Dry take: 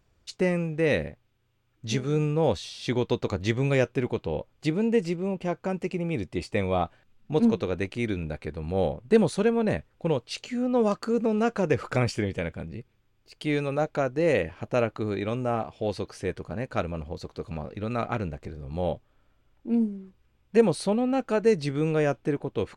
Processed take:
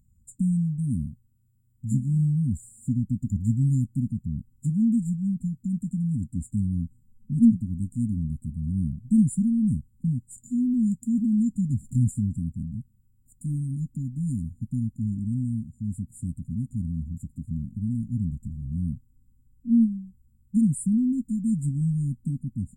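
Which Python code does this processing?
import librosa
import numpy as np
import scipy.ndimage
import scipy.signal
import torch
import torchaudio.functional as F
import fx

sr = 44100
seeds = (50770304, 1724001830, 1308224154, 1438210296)

y = fx.brickwall_bandstop(x, sr, low_hz=270.0, high_hz=7000.0)
y = F.gain(torch.from_numpy(y), 5.5).numpy()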